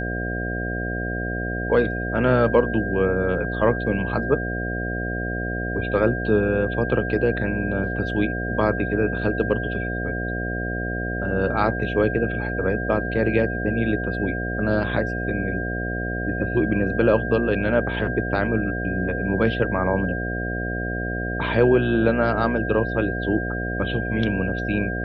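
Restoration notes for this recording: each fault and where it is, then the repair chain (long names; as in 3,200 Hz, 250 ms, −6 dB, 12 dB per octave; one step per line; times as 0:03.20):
mains buzz 60 Hz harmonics 12 −28 dBFS
whistle 1,600 Hz −29 dBFS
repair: notch filter 1,600 Hz, Q 30
hum removal 60 Hz, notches 12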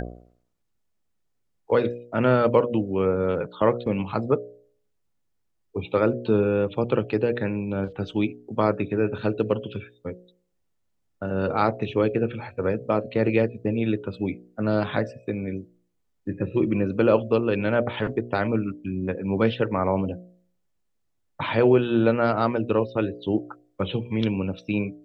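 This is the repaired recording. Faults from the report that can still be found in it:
none of them is left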